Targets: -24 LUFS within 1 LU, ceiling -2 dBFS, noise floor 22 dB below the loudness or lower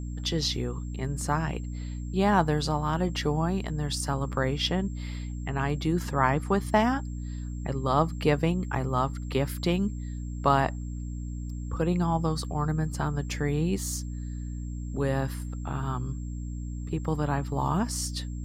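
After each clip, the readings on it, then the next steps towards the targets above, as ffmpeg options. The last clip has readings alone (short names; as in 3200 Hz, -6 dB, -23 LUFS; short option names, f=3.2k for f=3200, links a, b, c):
hum 60 Hz; harmonics up to 300 Hz; hum level -32 dBFS; steady tone 7500 Hz; tone level -55 dBFS; loudness -29.0 LUFS; peak -8.0 dBFS; loudness target -24.0 LUFS
-> -af "bandreject=f=60:t=h:w=4,bandreject=f=120:t=h:w=4,bandreject=f=180:t=h:w=4,bandreject=f=240:t=h:w=4,bandreject=f=300:t=h:w=4"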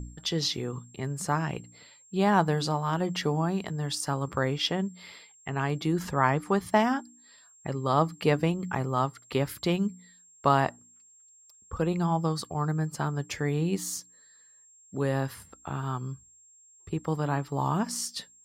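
hum none; steady tone 7500 Hz; tone level -55 dBFS
-> -af "bandreject=f=7.5k:w=30"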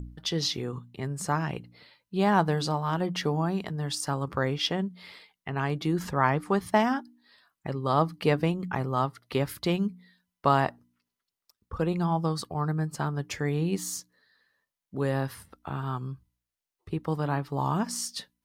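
steady tone none; loudness -29.0 LUFS; peak -8.0 dBFS; loudness target -24.0 LUFS
-> -af "volume=5dB"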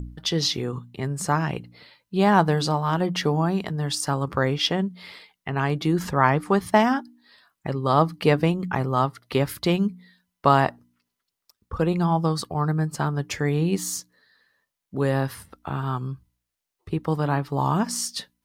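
loudness -24.0 LUFS; peak -3.0 dBFS; noise floor -83 dBFS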